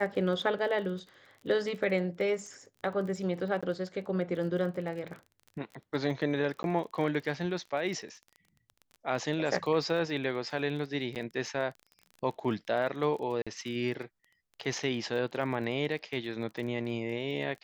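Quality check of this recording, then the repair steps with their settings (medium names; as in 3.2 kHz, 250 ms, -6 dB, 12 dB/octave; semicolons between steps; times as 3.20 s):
crackle 25 per s -40 dBFS
3.61–3.63 s: dropout 16 ms
6.63–6.64 s: dropout 11 ms
11.15–11.16 s: dropout 8.4 ms
13.42–13.47 s: dropout 46 ms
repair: de-click; interpolate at 3.61 s, 16 ms; interpolate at 6.63 s, 11 ms; interpolate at 11.15 s, 8.4 ms; interpolate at 13.42 s, 46 ms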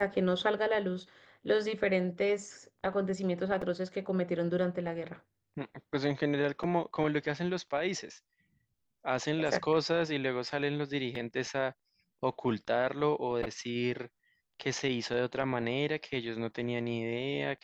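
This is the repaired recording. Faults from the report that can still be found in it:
nothing left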